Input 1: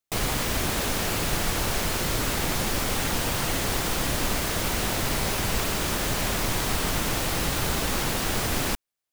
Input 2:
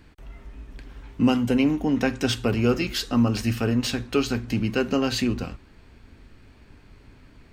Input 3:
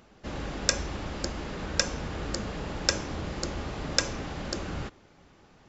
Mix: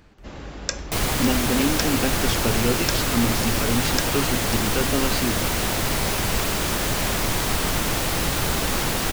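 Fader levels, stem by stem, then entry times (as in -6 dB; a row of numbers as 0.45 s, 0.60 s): +3.0 dB, -2.5 dB, -2.0 dB; 0.80 s, 0.00 s, 0.00 s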